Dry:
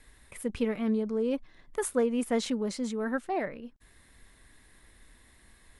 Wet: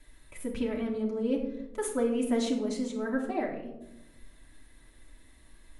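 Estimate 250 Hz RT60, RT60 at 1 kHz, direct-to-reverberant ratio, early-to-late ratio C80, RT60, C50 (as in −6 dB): 1.5 s, 0.80 s, −2.0 dB, 9.0 dB, 1.0 s, 6.5 dB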